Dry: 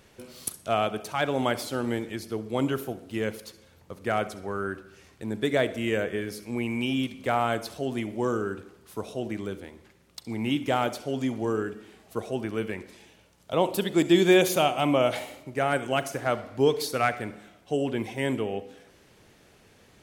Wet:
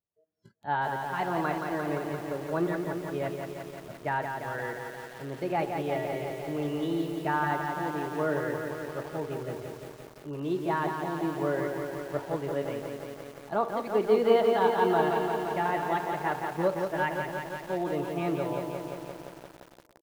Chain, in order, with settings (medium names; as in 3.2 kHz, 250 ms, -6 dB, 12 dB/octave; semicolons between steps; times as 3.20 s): spectral noise reduction 29 dB; dynamic bell 1.1 kHz, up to +6 dB, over -39 dBFS, Q 0.95; level rider gain up to 7.5 dB; pitch shift +4 st; tape spacing loss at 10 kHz 42 dB; comb of notches 260 Hz; tape echo 189 ms, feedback 81%, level -20 dB, low-pass 1.6 kHz; bit-crushed delay 173 ms, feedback 80%, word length 7-bit, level -5 dB; trim -7.5 dB